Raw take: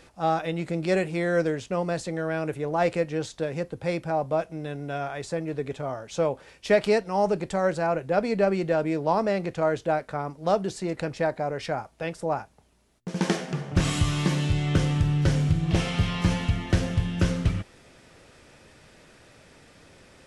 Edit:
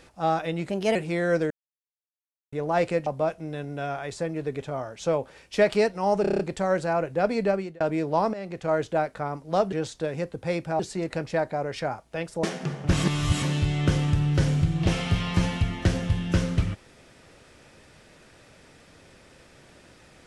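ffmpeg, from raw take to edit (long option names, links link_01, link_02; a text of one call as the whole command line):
ffmpeg -i in.wav -filter_complex "[0:a]asplit=19[link_01][link_02][link_03][link_04][link_05][link_06][link_07][link_08][link_09][link_10][link_11][link_12][link_13][link_14][link_15][link_16][link_17][link_18][link_19];[link_01]atrim=end=0.704[link_20];[link_02]atrim=start=0.7:end=1,asetpts=PTS-STARTPTS,asetrate=52038,aresample=44100[link_21];[link_03]atrim=start=0.996:end=1.55,asetpts=PTS-STARTPTS,afade=type=out:start_time=0.55:duration=0.004:curve=hsin[link_22];[link_04]atrim=start=1.55:end=2.57,asetpts=PTS-STARTPTS,volume=0[link_23];[link_05]atrim=start=2.57:end=3.112,asetpts=PTS-STARTPTS,afade=type=in:duration=0.004:curve=hsin[link_24];[link_06]atrim=start=4.178:end=7.362[link_25];[link_07]atrim=start=7.328:end=7.362[link_26];[link_08]atrim=start=7.328:end=7.362[link_27];[link_09]atrim=start=7.328:end=7.362[link_28];[link_10]atrim=start=7.328:end=7.362[link_29];[link_11]atrim=start=7.328:end=7.362[link_30];[link_12]atrim=start=7.328:end=8.74,asetpts=PTS-STARTPTS,afade=type=out:start_time=1.052:duration=0.36[link_31];[link_13]atrim=start=8.74:end=9.27,asetpts=PTS-STARTPTS,afade=type=in:duration=0.004:curve=hsin,afade=type=out:start_time=0.526:duration=0.004:curve=hsin:silence=0.188365[link_32];[link_14]atrim=start=9.27:end=10.662,asetpts=PTS-STARTPTS,afade=type=in:duration=0.41:silence=0.188365[link_33];[link_15]atrim=start=3.108:end=4.182[link_34];[link_16]atrim=start=10.658:end=12.302[link_35];[link_17]atrim=start=13.308:end=13.912[link_36];[link_18]atrim=start=13.908:end=14.302,asetpts=PTS-STARTPTS,areverse[link_37];[link_19]atrim=start=14.298[link_38];[link_20][link_21]acrossfade=duration=0.004:curve1=hsin:curve2=hsin[link_39];[link_22][link_23][link_24]concat=n=3:v=0:a=1[link_40];[link_39][link_40]acrossfade=duration=0.004:curve1=hsin:curve2=hsin[link_41];[link_41][link_25]acrossfade=duration=0.004:curve1=hsin:curve2=hsin[link_42];[link_42][link_26]acrossfade=duration=0.004:curve1=hsin:curve2=hsin[link_43];[link_43][link_27]acrossfade=duration=0.004:curve1=hsin:curve2=hsin[link_44];[link_44][link_28]acrossfade=duration=0.004:curve1=hsin:curve2=hsin[link_45];[link_45][link_29]acrossfade=duration=0.004:curve1=hsin:curve2=hsin[link_46];[link_46][link_30]acrossfade=duration=0.004:curve1=hsin:curve2=hsin[link_47];[link_31][link_32][link_33]concat=n=3:v=0:a=1[link_48];[link_47][link_48]acrossfade=duration=0.004:curve1=hsin:curve2=hsin[link_49];[link_49][link_34]acrossfade=duration=0.004:curve1=hsin:curve2=hsin[link_50];[link_50][link_35]acrossfade=duration=0.004:curve1=hsin:curve2=hsin[link_51];[link_51][link_36]acrossfade=duration=0.004:curve1=hsin:curve2=hsin[link_52];[link_52][link_37]acrossfade=duration=0.004:curve1=hsin:curve2=hsin[link_53];[link_53][link_38]acrossfade=duration=0.004:curve1=hsin:curve2=hsin" out.wav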